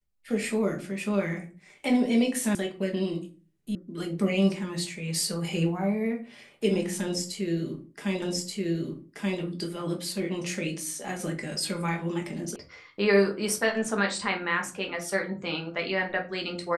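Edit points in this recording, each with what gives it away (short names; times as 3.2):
2.55 sound cut off
3.75 sound cut off
8.22 repeat of the last 1.18 s
12.56 sound cut off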